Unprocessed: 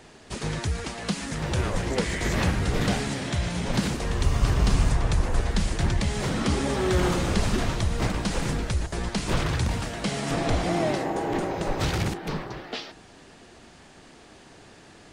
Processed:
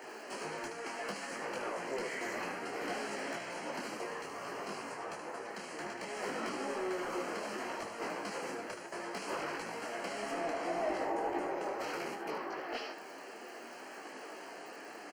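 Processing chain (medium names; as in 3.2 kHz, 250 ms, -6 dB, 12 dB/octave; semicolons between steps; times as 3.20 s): crackle 95 per s -43 dBFS; compression 2:1, threshold -44 dBFS, peak gain reduction 15.5 dB; Bessel high-pass 440 Hz, order 4; on a send: delay 75 ms -8 dB; on the sum: saturation -34 dBFS, distortion -18 dB; Butterworth band-stop 3.6 kHz, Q 3.7; peaking EQ 7.8 kHz -8.5 dB 2.8 oct; detune thickener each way 22 cents; trim +10.5 dB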